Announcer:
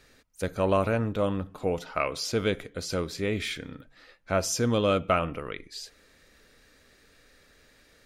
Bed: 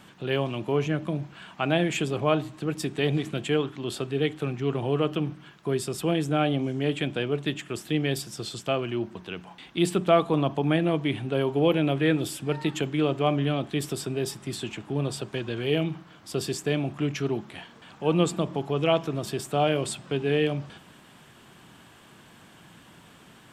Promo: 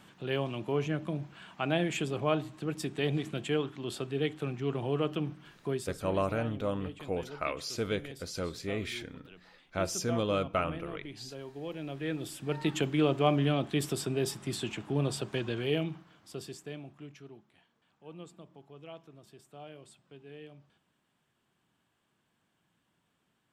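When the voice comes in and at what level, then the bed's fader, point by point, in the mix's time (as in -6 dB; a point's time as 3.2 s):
5.45 s, -6.0 dB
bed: 5.7 s -5.5 dB
6.15 s -18.5 dB
11.65 s -18.5 dB
12.74 s -2 dB
15.46 s -2 dB
17.45 s -24.5 dB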